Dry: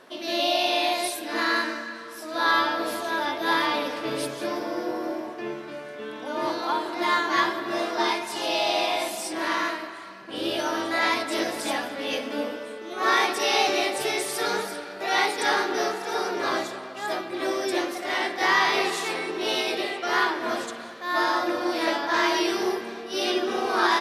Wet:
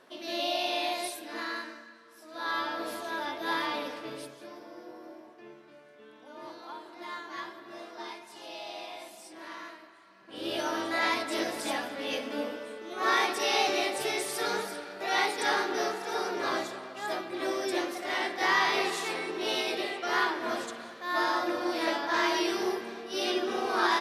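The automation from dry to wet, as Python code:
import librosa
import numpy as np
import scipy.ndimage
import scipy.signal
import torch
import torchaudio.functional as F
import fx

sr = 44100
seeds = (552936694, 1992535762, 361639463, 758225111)

y = fx.gain(x, sr, db=fx.line((1.04, -7.0), (2.02, -17.0), (2.77, -7.5), (3.9, -7.5), (4.45, -17.0), (10.07, -17.0), (10.56, -4.5)))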